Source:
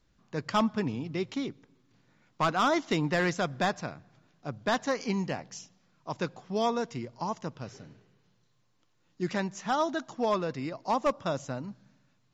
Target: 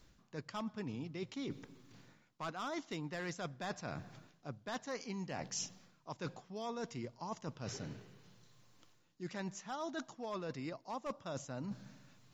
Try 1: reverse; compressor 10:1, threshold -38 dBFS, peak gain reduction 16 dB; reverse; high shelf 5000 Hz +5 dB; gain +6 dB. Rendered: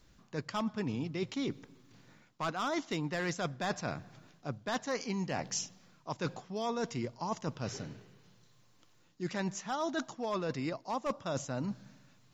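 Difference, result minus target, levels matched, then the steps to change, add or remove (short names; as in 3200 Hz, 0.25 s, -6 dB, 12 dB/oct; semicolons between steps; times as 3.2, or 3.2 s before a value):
compressor: peak gain reduction -7 dB
change: compressor 10:1, threshold -46 dBFS, peak gain reduction 23 dB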